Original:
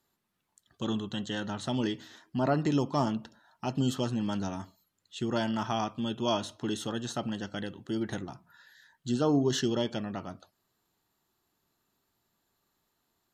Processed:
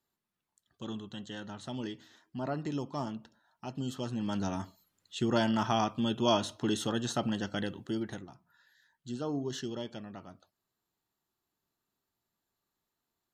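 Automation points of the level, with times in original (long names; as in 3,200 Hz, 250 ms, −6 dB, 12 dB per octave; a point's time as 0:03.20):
0:03.89 −8 dB
0:04.56 +2 dB
0:07.78 +2 dB
0:08.28 −9 dB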